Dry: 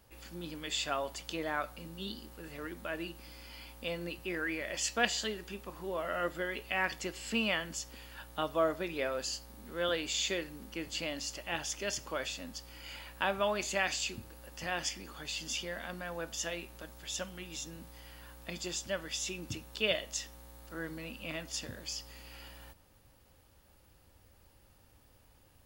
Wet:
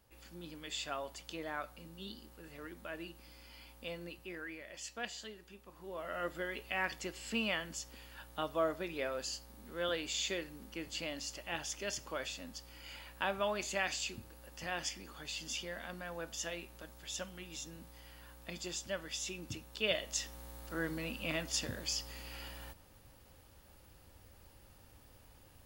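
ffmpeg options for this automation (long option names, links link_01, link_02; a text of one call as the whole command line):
ffmpeg -i in.wav -af "volume=9dB,afade=type=out:start_time=3.91:duration=0.75:silence=0.501187,afade=type=in:start_time=5.65:duration=0.72:silence=0.375837,afade=type=in:start_time=19.82:duration=0.63:silence=0.473151" out.wav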